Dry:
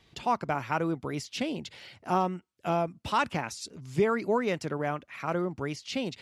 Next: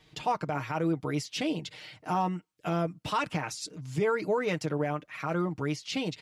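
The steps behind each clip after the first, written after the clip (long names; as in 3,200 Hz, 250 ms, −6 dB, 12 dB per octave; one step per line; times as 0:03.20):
comb filter 6.5 ms, depth 67%
brickwall limiter −19.5 dBFS, peak gain reduction 9.5 dB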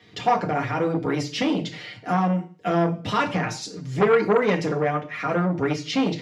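convolution reverb RT60 0.40 s, pre-delay 3 ms, DRR 1.5 dB
saturating transformer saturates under 840 Hz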